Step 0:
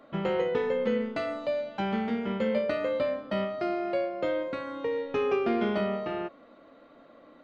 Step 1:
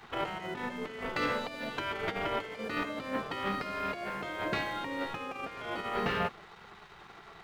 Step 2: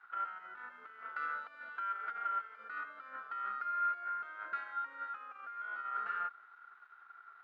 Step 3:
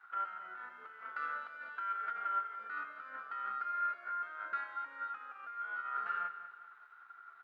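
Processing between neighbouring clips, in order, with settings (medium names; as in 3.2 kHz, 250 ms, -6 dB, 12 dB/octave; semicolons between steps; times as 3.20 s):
compressor with a negative ratio -32 dBFS, ratio -0.5; waveshaping leveller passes 2; spectral gate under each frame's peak -10 dB weak
waveshaping leveller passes 1; band-pass filter 1.4 kHz, Q 15; trim +2.5 dB
flange 0.39 Hz, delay 9.9 ms, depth 2.1 ms, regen +68%; feedback delay 196 ms, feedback 42%, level -13 dB; trim +4.5 dB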